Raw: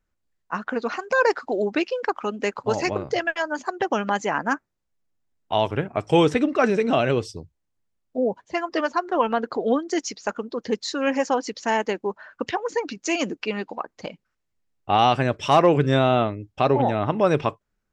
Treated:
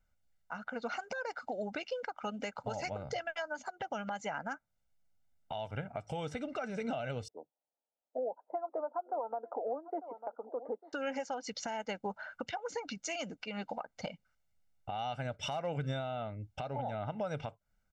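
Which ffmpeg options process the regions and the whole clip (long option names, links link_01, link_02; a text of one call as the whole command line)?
ffmpeg -i in.wav -filter_complex "[0:a]asettb=1/sr,asplit=3[link_01][link_02][link_03];[link_01]atrim=end=7.284[link_04];[link_02]atrim=start=7.28:end=10.93,asetpts=PTS-STARTPTS,afade=type=in:duration=0.004:curve=qsin,afade=type=out:start_time=3.646:duration=0.004:curve=qsin,asuperpass=centerf=570:order=8:qfactor=0.75,aecho=1:1:897:0.0794,atrim=end_sample=160965[link_05];[link_03]atrim=start=10.926[link_06];[link_04][link_05]acrossfade=duration=0.004:curve1=hsin:curve2=qsin[link_07];[link_07][link_06]acrossfade=duration=0.004:curve1=qsin:curve2=hsin,aecho=1:1:1.4:0.76,acompressor=threshold=-29dB:ratio=5,alimiter=limit=-24dB:level=0:latency=1:release=227,volume=-3.5dB" out.wav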